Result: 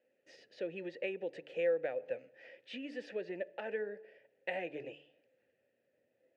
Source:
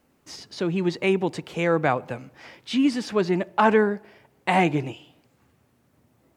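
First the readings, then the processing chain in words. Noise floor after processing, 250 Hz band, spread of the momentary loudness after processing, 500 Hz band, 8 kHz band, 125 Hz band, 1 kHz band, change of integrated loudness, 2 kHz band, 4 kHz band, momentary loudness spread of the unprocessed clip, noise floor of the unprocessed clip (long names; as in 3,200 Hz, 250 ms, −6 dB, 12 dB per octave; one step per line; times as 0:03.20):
−79 dBFS, −23.5 dB, 17 LU, −12.5 dB, below −25 dB, −29.5 dB, −26.0 dB, −16.5 dB, −16.0 dB, −18.0 dB, 17 LU, −65 dBFS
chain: hum removal 145.9 Hz, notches 3
downward compressor 6 to 1, threshold −22 dBFS, peak gain reduction 9 dB
formant filter e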